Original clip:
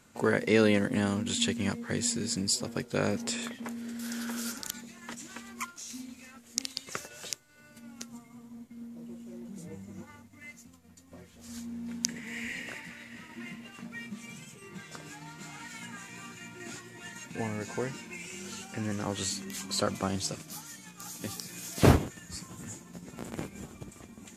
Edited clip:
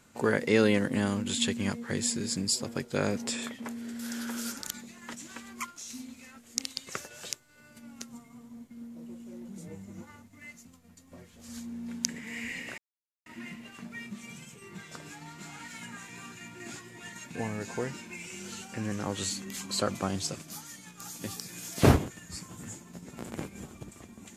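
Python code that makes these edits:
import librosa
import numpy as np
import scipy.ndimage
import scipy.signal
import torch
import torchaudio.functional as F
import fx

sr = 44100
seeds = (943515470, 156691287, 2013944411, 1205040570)

y = fx.edit(x, sr, fx.silence(start_s=12.78, length_s=0.48), tone=tone)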